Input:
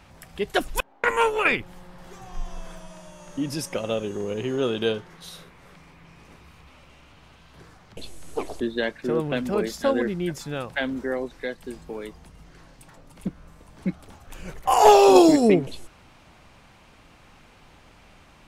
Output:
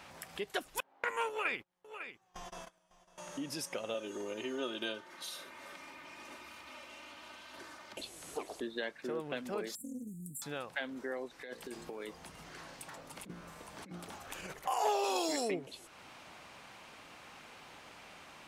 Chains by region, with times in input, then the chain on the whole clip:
1.29–3.18 gate -35 dBFS, range -29 dB + echo 0.551 s -21 dB
3.94–8.01 HPF 150 Hz 6 dB/oct + comb 3.3 ms, depth 77%
9.75–10.42 brick-wall FIR band-stop 300–7300 Hz + tilt +2 dB/oct + Doppler distortion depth 0.17 ms
11.39–14.53 de-hum 58.09 Hz, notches 10 + negative-ratio compressor -37 dBFS
15.04–15.51 LPF 2300 Hz 6 dB/oct + tilt +4.5 dB/oct + fast leveller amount 70%
whole clip: HPF 470 Hz 6 dB/oct; compressor 2:1, threshold -47 dBFS; gain +2 dB

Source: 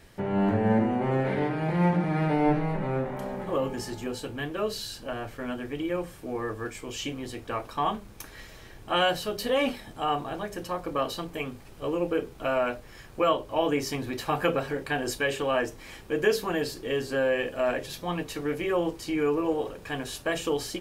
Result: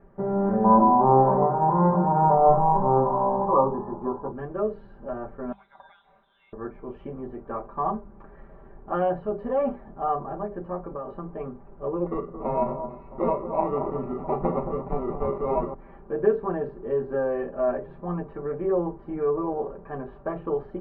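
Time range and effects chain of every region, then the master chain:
0.64–4.32 synth low-pass 990 Hz, resonance Q 8.8 + doubler 15 ms -5 dB
5.52–6.53 compressor 1.5:1, threshold -40 dBFS + inverted band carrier 3900 Hz
10.82–11.3 running mean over 4 samples + compressor 5:1, threshold -30 dBFS
12.06–15.74 sample-rate reducer 1600 Hz + echo with dull and thin repeats by turns 0.222 s, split 1500 Hz, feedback 63%, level -9 dB
whole clip: LPF 1200 Hz 24 dB/oct; notches 50/100/150/200 Hz; comb 5.1 ms, depth 74%

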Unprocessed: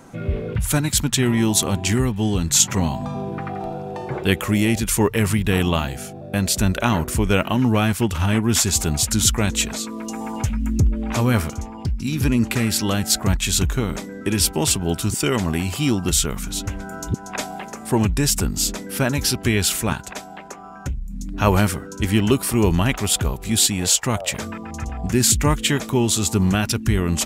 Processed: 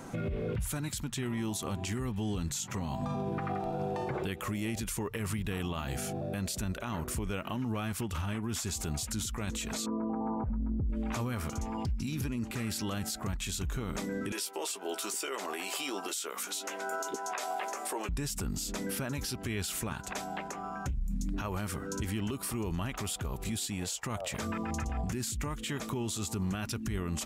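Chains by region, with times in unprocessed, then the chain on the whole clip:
9.86–10.9 inverse Chebyshev low-pass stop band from 6300 Hz, stop band 80 dB + compressor, threshold -19 dBFS
14.32–18.09 HPF 390 Hz 24 dB/oct + doubler 15 ms -9 dB
whole clip: dynamic EQ 1200 Hz, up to +4 dB, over -41 dBFS, Q 4.5; compressor 12:1, threshold -27 dBFS; limiter -26 dBFS

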